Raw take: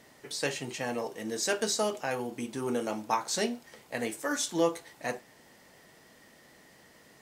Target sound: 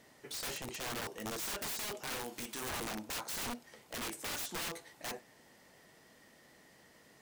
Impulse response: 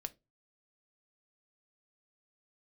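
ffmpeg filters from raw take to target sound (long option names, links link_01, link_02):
-filter_complex "[0:a]asettb=1/sr,asplit=3[link_01][link_02][link_03];[link_01]atrim=end=2.154[link_04];[link_02]atrim=start=2.15:end=2.69,asetpts=PTS-STARTPTS,afade=type=in:duration=0.004:curve=qsin,afade=type=out:start_time=0.536:duration=0.004:curve=qsin,tiltshelf=frequency=630:gain=-7.5[link_05];[link_03]atrim=start=2.686[link_06];[link_04][link_05]acrossfade=duration=0.004:curve1=hsin:curve2=qsin[link_07];[link_07][link_06]acrossfade=duration=0.004:curve1=qsin:curve2=hsin,aeval=exprs='(mod(29.9*val(0)+1,2)-1)/29.9':channel_layout=same,volume=-4.5dB"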